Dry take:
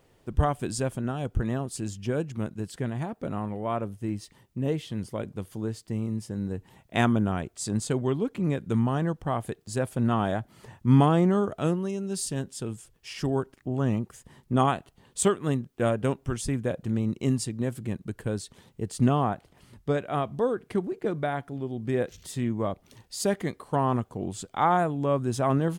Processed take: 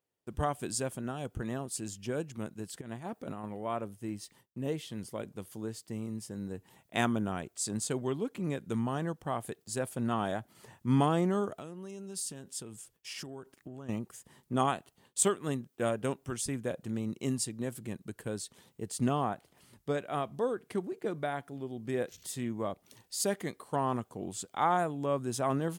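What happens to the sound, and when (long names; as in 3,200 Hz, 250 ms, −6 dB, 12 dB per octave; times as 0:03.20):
0:02.81–0:03.45: compressor whose output falls as the input rises −33 dBFS, ratio −0.5
0:11.58–0:13.89: downward compressor 12 to 1, threshold −32 dBFS
whole clip: noise gate with hold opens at −46 dBFS; high-pass filter 180 Hz 6 dB per octave; high-shelf EQ 6,000 Hz +8.5 dB; level −5 dB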